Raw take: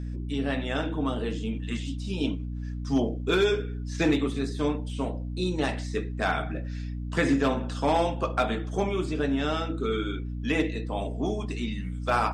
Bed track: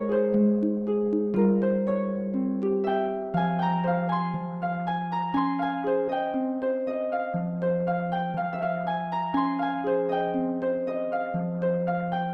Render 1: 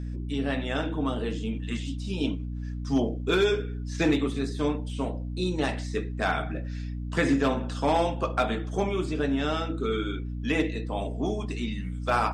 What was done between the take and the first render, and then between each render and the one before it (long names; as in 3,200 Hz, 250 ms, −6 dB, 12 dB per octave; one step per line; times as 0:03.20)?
no processing that can be heard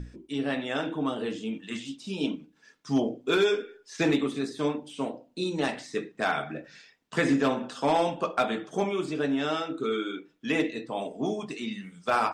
mains-hum notches 60/120/180/240/300 Hz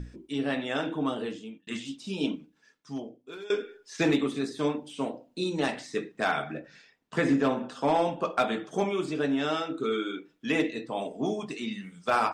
0:01.15–0:01.67: fade out
0:02.31–0:03.50: fade out quadratic, to −19.5 dB
0:06.59–0:08.25: high-shelf EQ 2,200 Hz −6 dB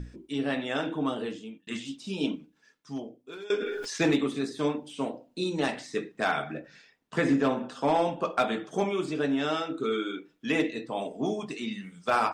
0:03.56–0:04.06: level that may fall only so fast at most 21 dB per second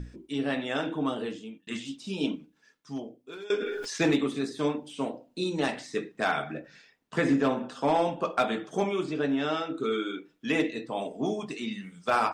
0:09.03–0:09.75: high-frequency loss of the air 65 metres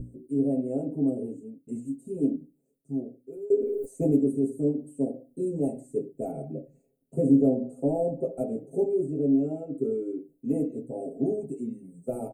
inverse Chebyshev band-stop filter 1,000–5,600 Hz, stop band 40 dB
comb filter 7.5 ms, depth 97%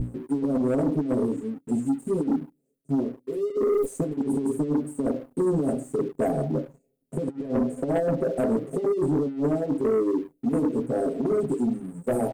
compressor whose output falls as the input rises −28 dBFS, ratio −0.5
leveller curve on the samples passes 2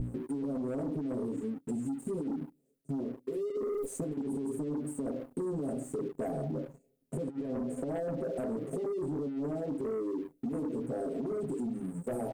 brickwall limiter −25 dBFS, peak gain reduction 9 dB
downward compressor, threshold −32 dBFS, peak gain reduction 5 dB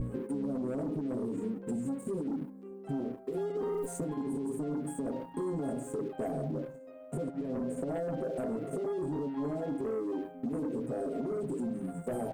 mix in bed track −21 dB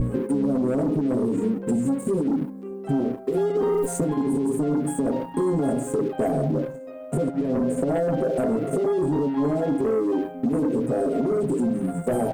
level +11.5 dB